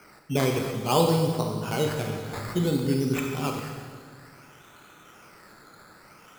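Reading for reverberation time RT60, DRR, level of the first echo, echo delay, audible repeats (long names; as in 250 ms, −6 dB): 1.7 s, 2.0 dB, no echo audible, no echo audible, no echo audible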